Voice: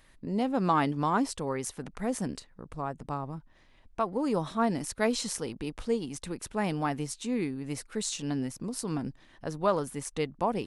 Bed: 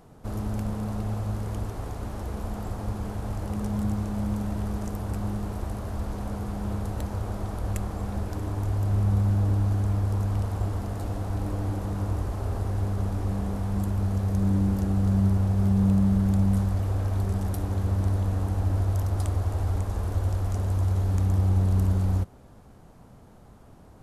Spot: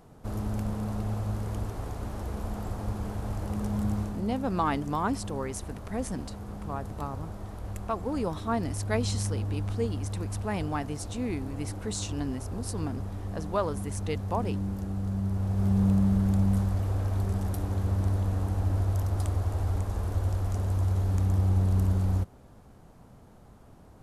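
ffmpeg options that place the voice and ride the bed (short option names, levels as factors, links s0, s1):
-filter_complex "[0:a]adelay=3900,volume=0.794[s0];[1:a]volume=1.68,afade=t=out:st=4.01:d=0.2:silence=0.473151,afade=t=in:st=15.26:d=0.49:silence=0.501187[s1];[s0][s1]amix=inputs=2:normalize=0"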